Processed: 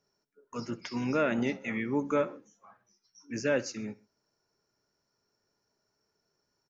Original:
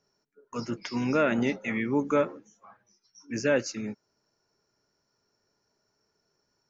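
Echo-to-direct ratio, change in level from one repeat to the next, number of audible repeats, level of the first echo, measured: -19.0 dB, -6.5 dB, 2, -20.0 dB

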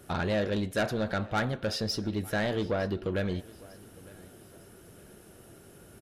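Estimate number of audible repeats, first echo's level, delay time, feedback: 2, -22.0 dB, 906 ms, 38%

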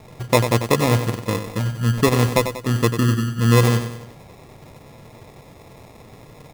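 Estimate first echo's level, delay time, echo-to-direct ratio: -9.0 dB, 94 ms, -8.0 dB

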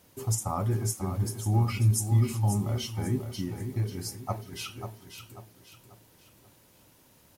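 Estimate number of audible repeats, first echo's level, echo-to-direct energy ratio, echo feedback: 4, -8.5 dB, -8.0 dB, 38%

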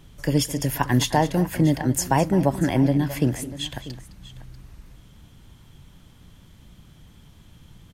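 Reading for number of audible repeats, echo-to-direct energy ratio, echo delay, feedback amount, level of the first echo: 2, -13.0 dB, 211 ms, no regular repeats, -15.5 dB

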